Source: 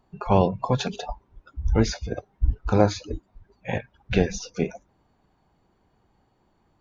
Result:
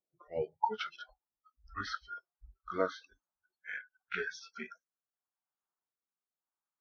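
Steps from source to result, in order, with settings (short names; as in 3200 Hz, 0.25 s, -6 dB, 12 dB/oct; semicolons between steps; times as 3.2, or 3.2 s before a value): gliding pitch shift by -3 st ending unshifted; spectral noise reduction 26 dB; rotary speaker horn 0.85 Hz; band-pass sweep 430 Hz -> 1300 Hz, 0.03–0.99; gain +6.5 dB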